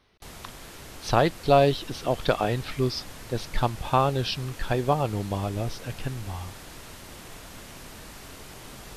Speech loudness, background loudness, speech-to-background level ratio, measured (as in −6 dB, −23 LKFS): −26.5 LKFS, −43.0 LKFS, 16.5 dB